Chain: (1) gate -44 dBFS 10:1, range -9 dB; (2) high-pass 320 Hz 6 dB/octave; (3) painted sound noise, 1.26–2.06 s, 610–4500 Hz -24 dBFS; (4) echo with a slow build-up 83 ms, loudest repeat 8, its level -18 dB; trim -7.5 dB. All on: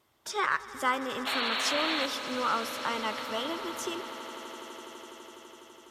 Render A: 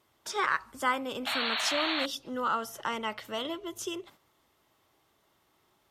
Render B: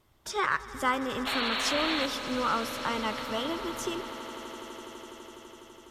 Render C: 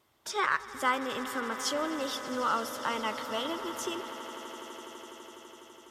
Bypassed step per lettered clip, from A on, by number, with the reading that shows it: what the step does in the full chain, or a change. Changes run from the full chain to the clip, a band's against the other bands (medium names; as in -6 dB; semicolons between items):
4, echo-to-direct -6.5 dB to none; 2, 125 Hz band +8.0 dB; 3, 4 kHz band -5.0 dB